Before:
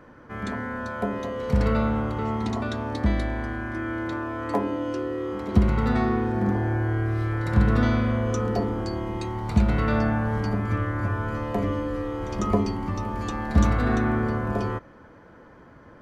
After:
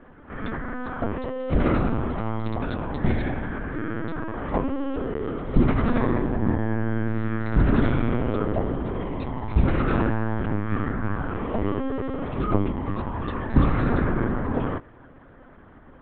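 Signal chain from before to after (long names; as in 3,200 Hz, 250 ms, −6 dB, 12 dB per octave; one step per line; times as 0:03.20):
linear-prediction vocoder at 8 kHz pitch kept
parametric band 260 Hz +5.5 dB 0.47 octaves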